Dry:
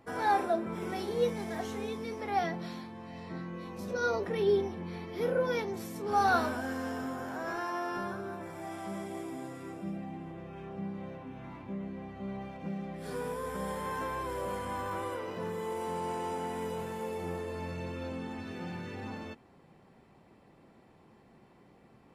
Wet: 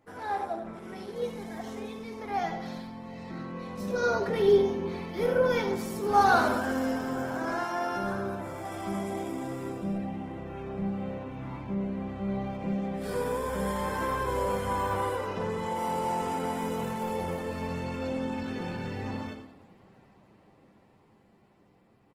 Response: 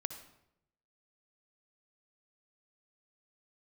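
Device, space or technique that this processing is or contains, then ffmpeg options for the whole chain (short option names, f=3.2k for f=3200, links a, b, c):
speakerphone in a meeting room: -filter_complex "[0:a]asettb=1/sr,asplit=3[a][b][c];[a]atrim=end=15.274[d];[b]atrim=start=15.27:end=15.76,asetpts=PTS-STARTPTS,afade=t=in:d=0.004:c=qsin,afade=t=out:st=0.486:d=0.004:c=qsin,lowpass=8.3k[e];[c]atrim=start=15.756[f];[d][e]acrossfade=d=0.004:c1=hsin:c2=qsin[g];[g][f]acrossfade=d=0.004:c1=qsin:c2=hsin,aecho=1:1:10|76:0.299|0.316[h];[1:a]atrim=start_sample=2205[i];[h][i]afir=irnorm=-1:irlink=0,dynaudnorm=f=550:g=11:m=10dB,volume=-4.5dB" -ar 48000 -c:a libopus -b:a 16k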